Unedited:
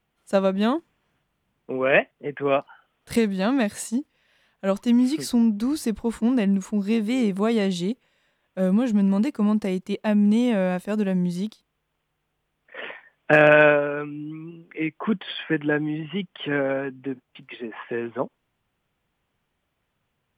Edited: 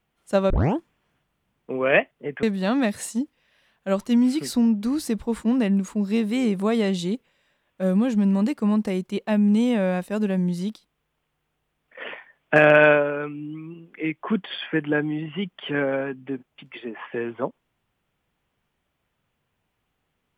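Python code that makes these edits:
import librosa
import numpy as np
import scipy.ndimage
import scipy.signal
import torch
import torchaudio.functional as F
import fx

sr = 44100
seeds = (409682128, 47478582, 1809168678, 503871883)

y = fx.edit(x, sr, fx.tape_start(start_s=0.5, length_s=0.27),
    fx.cut(start_s=2.43, length_s=0.77), tone=tone)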